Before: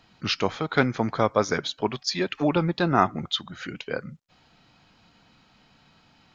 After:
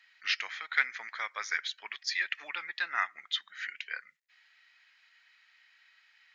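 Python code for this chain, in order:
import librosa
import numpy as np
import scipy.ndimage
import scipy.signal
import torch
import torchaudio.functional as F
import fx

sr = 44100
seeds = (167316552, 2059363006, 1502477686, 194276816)

y = fx.highpass_res(x, sr, hz=1900.0, q=6.1)
y = y * librosa.db_to_amplitude(-8.0)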